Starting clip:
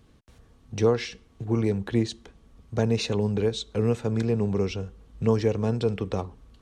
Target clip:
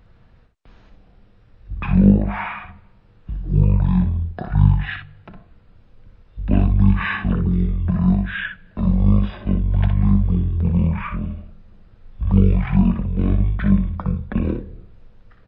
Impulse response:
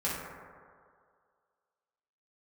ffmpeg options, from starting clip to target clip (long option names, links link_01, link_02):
-filter_complex "[0:a]highshelf=frequency=7600:gain=-4.5,asplit=2[link_01][link_02];[link_02]adelay=26,volume=-7dB[link_03];[link_01][link_03]amix=inputs=2:normalize=0,asetrate=18846,aresample=44100,volume=6.5dB"